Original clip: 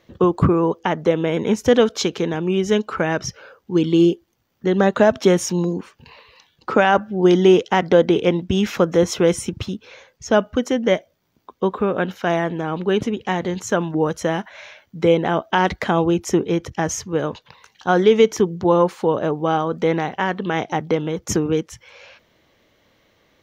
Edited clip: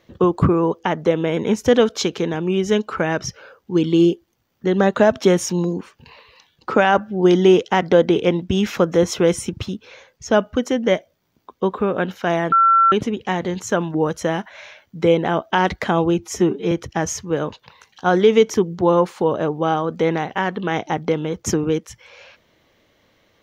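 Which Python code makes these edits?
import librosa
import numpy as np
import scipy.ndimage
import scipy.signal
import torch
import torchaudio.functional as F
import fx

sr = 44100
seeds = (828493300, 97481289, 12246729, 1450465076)

y = fx.edit(x, sr, fx.bleep(start_s=12.52, length_s=0.4, hz=1350.0, db=-10.0),
    fx.stretch_span(start_s=16.19, length_s=0.35, factor=1.5), tone=tone)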